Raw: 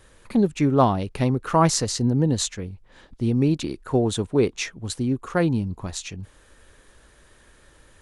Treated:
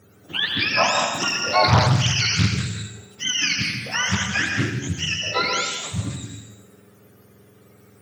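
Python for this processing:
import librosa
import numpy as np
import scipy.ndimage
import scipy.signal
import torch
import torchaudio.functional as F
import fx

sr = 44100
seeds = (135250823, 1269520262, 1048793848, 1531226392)

p1 = fx.octave_mirror(x, sr, pivot_hz=840.0)
p2 = fx.highpass(p1, sr, hz=140.0, slope=6)
p3 = p2 + fx.echo_single(p2, sr, ms=83, db=-9.5, dry=0)
p4 = fx.rev_plate(p3, sr, seeds[0], rt60_s=0.93, hf_ratio=0.95, predelay_ms=110, drr_db=2.0)
p5 = fx.doppler_dist(p4, sr, depth_ms=0.68)
y = p5 * librosa.db_to_amplitude(2.0)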